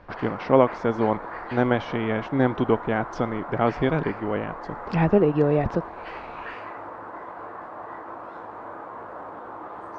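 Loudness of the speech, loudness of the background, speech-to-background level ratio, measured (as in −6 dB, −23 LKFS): −24.0 LKFS, −37.0 LKFS, 13.0 dB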